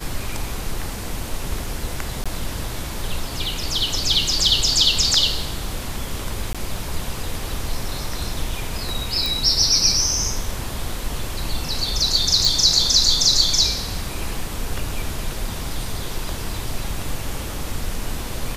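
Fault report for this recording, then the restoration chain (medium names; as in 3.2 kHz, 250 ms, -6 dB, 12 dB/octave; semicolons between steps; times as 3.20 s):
2.24–2.26 s: dropout 16 ms
6.53–6.55 s: dropout 16 ms
9.26 s: pop
12.45 s: pop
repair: de-click; interpolate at 2.24 s, 16 ms; interpolate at 6.53 s, 16 ms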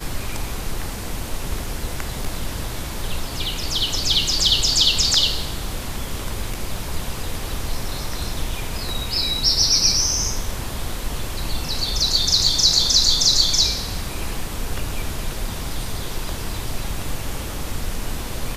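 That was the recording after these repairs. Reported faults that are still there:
nothing left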